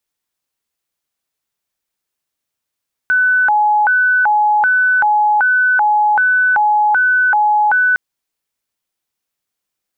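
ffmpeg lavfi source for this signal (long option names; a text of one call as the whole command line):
ffmpeg -f lavfi -i "aevalsrc='0.335*sin(2*PI*(1171*t+329/1.3*(0.5-abs(mod(1.3*t,1)-0.5))))':duration=4.86:sample_rate=44100" out.wav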